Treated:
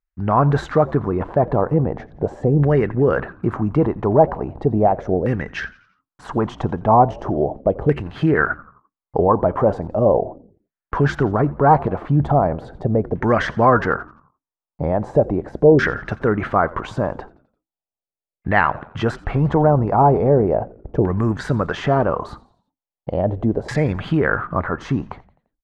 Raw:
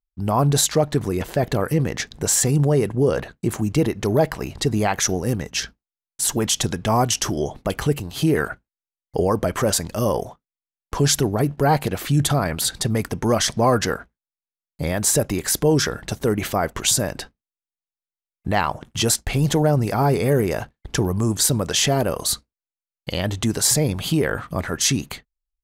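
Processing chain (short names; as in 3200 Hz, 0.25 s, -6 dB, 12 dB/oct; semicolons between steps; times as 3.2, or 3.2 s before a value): LFO low-pass saw down 0.38 Hz 560–1900 Hz; frequency-shifting echo 86 ms, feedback 49%, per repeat -82 Hz, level -20.5 dB; gain +1.5 dB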